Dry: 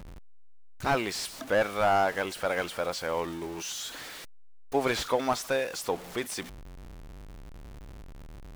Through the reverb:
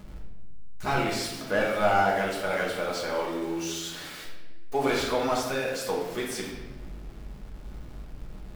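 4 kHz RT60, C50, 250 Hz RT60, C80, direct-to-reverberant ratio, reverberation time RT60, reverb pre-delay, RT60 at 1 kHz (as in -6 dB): 0.95 s, 2.5 dB, 2.0 s, 5.5 dB, -3.5 dB, 1.2 s, 5 ms, 1.0 s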